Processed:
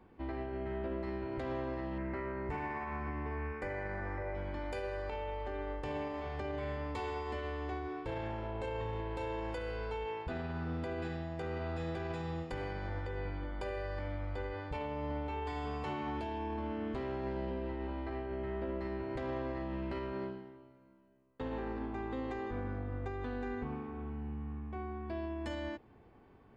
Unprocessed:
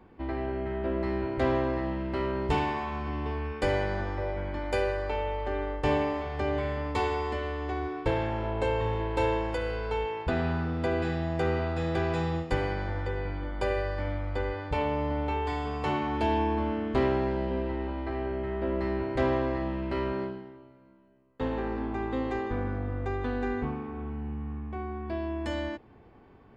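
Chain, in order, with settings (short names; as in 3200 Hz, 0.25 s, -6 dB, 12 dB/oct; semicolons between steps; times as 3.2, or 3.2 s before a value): 1.98–4.35 resonant high shelf 2600 Hz -7.5 dB, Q 3; limiter -25 dBFS, peak gain reduction 10.5 dB; gain -5.5 dB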